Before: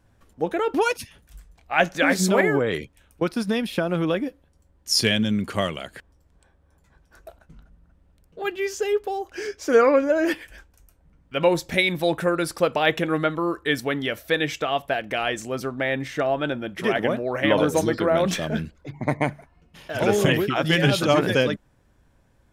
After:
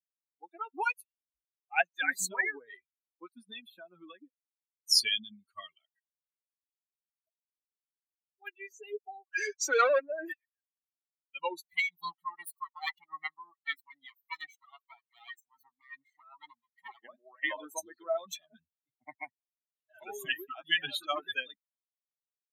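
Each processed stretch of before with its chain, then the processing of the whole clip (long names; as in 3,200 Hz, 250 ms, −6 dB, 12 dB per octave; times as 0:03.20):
0:09.27–0:10.00: elliptic high-pass filter 240 Hz + dynamic equaliser 1,000 Hz, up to −6 dB, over −37 dBFS, Q 3 + mid-hump overdrive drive 23 dB, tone 5,700 Hz, clips at −7.5 dBFS
0:11.66–0:17.03: lower of the sound and its delayed copy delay 0.95 ms + amplitude tremolo 2.5 Hz, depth 40%
whole clip: spectral dynamics exaggerated over time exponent 3; high-pass filter 880 Hz 12 dB per octave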